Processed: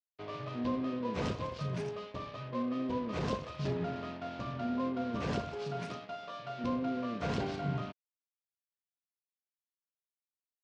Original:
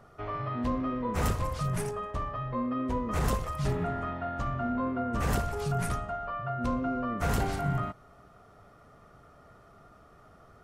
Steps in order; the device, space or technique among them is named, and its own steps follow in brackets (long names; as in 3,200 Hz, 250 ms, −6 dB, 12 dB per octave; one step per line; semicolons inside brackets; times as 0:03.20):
0:05.55–0:06.64: high-pass filter 180 Hz 12 dB per octave
blown loudspeaker (dead-zone distortion −43.5 dBFS; loudspeaker in its box 150–5,000 Hz, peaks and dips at 810 Hz −7 dB, 1,300 Hz −9 dB, 1,900 Hz −6 dB)